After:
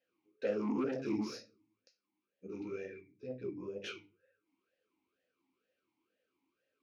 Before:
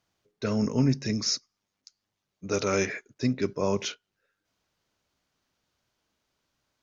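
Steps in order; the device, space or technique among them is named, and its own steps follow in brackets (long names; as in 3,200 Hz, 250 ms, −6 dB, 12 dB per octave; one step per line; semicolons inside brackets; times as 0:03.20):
0:02.47–0:03.84: drawn EQ curve 150 Hz 0 dB, 230 Hz −13 dB, 380 Hz −11 dB, 660 Hz −22 dB, 4,000 Hz −16 dB
rectangular room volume 220 cubic metres, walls furnished, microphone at 2.1 metres
talk box (tube saturation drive 25 dB, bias 0.6; formant filter swept between two vowels e-u 2.1 Hz)
level +7 dB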